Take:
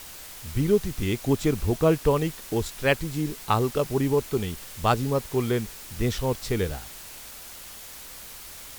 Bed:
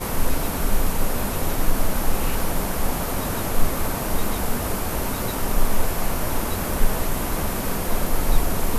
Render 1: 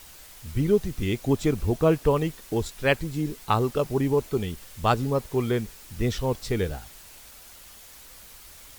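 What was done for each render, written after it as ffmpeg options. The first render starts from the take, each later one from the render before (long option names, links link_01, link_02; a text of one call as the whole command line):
ffmpeg -i in.wav -af "afftdn=noise_reduction=6:noise_floor=-42" out.wav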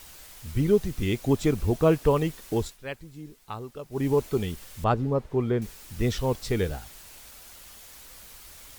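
ffmpeg -i in.wav -filter_complex "[0:a]asettb=1/sr,asplit=3[link_01][link_02][link_03];[link_01]atrim=end=4.844[link_04];[link_02]atrim=start=4.84:end=5.62,asetpts=PTS-STARTPTS,afade=type=in:duration=0.004:curve=qsin,afade=type=out:start_time=0.776:duration=0.004:curve=qsin,lowpass=frequency=1100:poles=1[link_05];[link_03]atrim=start=5.616[link_06];[link_04][link_05]acrossfade=duration=0.004:curve1=hsin:curve2=qsin[link_07];[link_07][link_06]acrossfade=duration=0.004:curve1=qsin:curve2=hsin,asplit=3[link_08][link_09][link_10];[link_08]atrim=end=2.78,asetpts=PTS-STARTPTS,afade=type=out:start_time=2.55:duration=0.23:curve=qsin:silence=0.199526[link_11];[link_09]atrim=start=2.78:end=3.91,asetpts=PTS-STARTPTS,volume=-14dB[link_12];[link_10]atrim=start=3.91,asetpts=PTS-STARTPTS,afade=type=in:duration=0.23:curve=qsin:silence=0.199526[link_13];[link_11][link_12][link_13]concat=n=3:v=0:a=1" out.wav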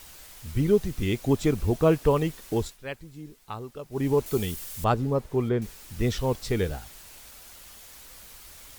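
ffmpeg -i in.wav -filter_complex "[0:a]asettb=1/sr,asplit=3[link_01][link_02][link_03];[link_01]atrim=end=4.264[link_04];[link_02]atrim=start=4.26:end=5.49,asetpts=PTS-STARTPTS,afade=type=in:duration=0.004:curve=qsin,afade=type=out:start_time=1.226:duration=0.004:curve=qsin,highshelf=frequency=5500:gain=11[link_05];[link_03]atrim=start=5.486[link_06];[link_04][link_05]acrossfade=duration=0.004:curve1=hsin:curve2=qsin[link_07];[link_07][link_06]acrossfade=duration=0.004:curve1=qsin:curve2=hsin" out.wav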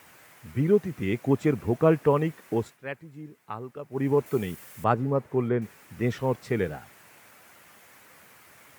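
ffmpeg -i in.wav -af "highpass=frequency=110:width=0.5412,highpass=frequency=110:width=1.3066,highshelf=frequency=2800:width_type=q:width=1.5:gain=-9" out.wav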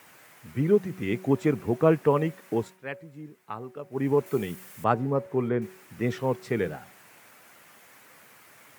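ffmpeg -i in.wav -af "highpass=110,bandreject=frequency=187:width_type=h:width=4,bandreject=frequency=374:width_type=h:width=4,bandreject=frequency=561:width_type=h:width=4,bandreject=frequency=748:width_type=h:width=4,bandreject=frequency=935:width_type=h:width=4" out.wav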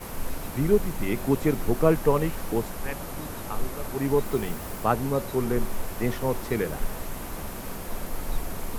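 ffmpeg -i in.wav -i bed.wav -filter_complex "[1:a]volume=-10.5dB[link_01];[0:a][link_01]amix=inputs=2:normalize=0" out.wav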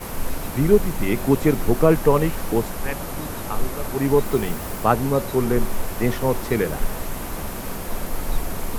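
ffmpeg -i in.wav -af "volume=5.5dB,alimiter=limit=-2dB:level=0:latency=1" out.wav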